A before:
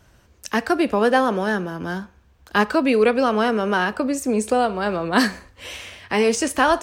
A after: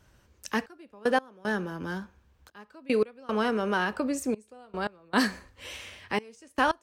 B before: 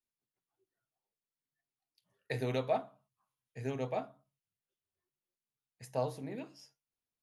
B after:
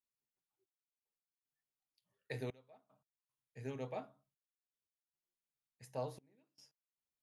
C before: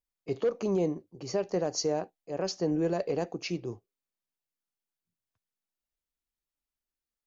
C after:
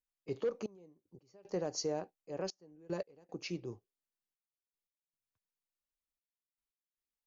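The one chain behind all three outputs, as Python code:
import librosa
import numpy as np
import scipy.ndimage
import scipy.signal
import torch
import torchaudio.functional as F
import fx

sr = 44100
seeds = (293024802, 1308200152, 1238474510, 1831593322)

y = fx.notch(x, sr, hz=690.0, q=12.0)
y = fx.step_gate(y, sr, bpm=114, pattern='xxxxx...x..xxx', floor_db=-24.0, edge_ms=4.5)
y = F.gain(torch.from_numpy(y), -6.5).numpy()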